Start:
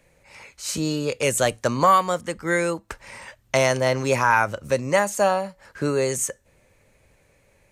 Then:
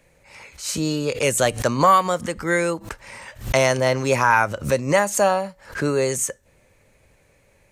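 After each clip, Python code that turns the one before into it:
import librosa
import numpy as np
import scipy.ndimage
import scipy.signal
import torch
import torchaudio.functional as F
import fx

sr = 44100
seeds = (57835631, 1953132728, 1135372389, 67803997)

y = fx.pre_swell(x, sr, db_per_s=150.0)
y = F.gain(torch.from_numpy(y), 1.5).numpy()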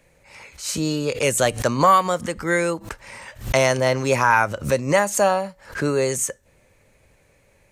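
y = x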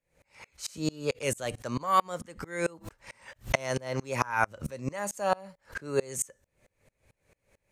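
y = fx.tremolo_decay(x, sr, direction='swelling', hz=4.5, depth_db=29)
y = F.gain(torch.from_numpy(y), -2.0).numpy()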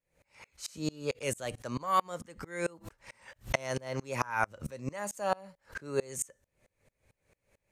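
y = fx.vibrato(x, sr, rate_hz=0.82, depth_cents=16.0)
y = F.gain(torch.from_numpy(y), -3.5).numpy()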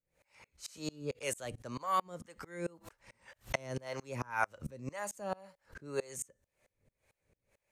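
y = fx.harmonic_tremolo(x, sr, hz=1.9, depth_pct=70, crossover_hz=440.0)
y = F.gain(torch.from_numpy(y), -1.0).numpy()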